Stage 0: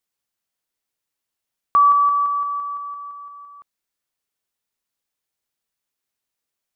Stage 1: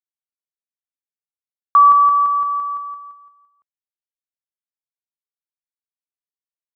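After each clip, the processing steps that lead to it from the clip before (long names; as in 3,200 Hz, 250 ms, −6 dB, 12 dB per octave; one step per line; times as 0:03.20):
downward expander −28 dBFS
dynamic equaliser 110 Hz, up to +5 dB, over −56 dBFS, Q 3
level +4 dB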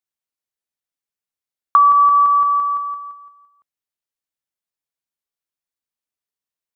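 downward compressor, threshold −14 dBFS, peak gain reduction 6.5 dB
level +4.5 dB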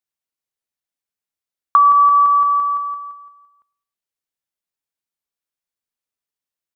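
repeating echo 106 ms, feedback 50%, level −23.5 dB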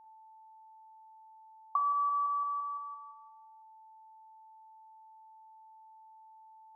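formant resonators in series a
steady tone 880 Hz −47 dBFS
convolution reverb, pre-delay 40 ms, DRR 7 dB
level −8 dB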